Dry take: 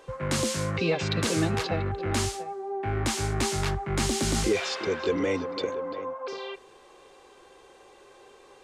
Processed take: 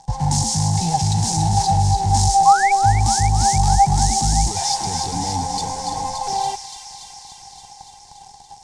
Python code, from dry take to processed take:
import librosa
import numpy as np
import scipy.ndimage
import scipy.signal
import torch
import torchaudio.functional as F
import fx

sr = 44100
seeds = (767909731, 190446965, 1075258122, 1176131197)

p1 = fx.low_shelf(x, sr, hz=110.0, db=7.5)
p2 = fx.fuzz(p1, sr, gain_db=38.0, gate_db=-47.0)
p3 = p1 + (p2 * librosa.db_to_amplitude(-4.5))
p4 = fx.rider(p3, sr, range_db=10, speed_s=0.5)
p5 = fx.curve_eq(p4, sr, hz=(160.0, 370.0, 580.0, 820.0, 1200.0, 1800.0, 2600.0, 5500.0, 9100.0, 14000.0), db=(0, -20, -22, 12, -27, -18, -22, 2, -1, -26))
p6 = fx.spec_paint(p5, sr, seeds[0], shape='rise', start_s=2.45, length_s=0.27, low_hz=1000.0, high_hz=2400.0, level_db=-23.0)
y = p6 + fx.echo_wet_highpass(p6, sr, ms=286, feedback_pct=74, hz=2000.0, wet_db=-6, dry=0)